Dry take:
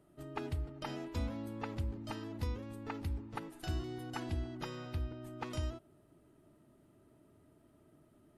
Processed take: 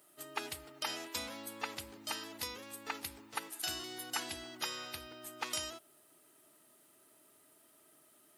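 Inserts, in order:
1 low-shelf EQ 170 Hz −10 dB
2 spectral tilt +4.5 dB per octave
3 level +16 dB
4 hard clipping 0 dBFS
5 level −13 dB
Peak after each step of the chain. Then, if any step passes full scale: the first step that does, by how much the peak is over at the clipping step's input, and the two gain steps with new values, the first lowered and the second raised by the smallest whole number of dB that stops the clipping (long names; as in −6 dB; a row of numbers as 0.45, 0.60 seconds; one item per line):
−25.5, −22.0, −6.0, −6.0, −19.0 dBFS
no step passes full scale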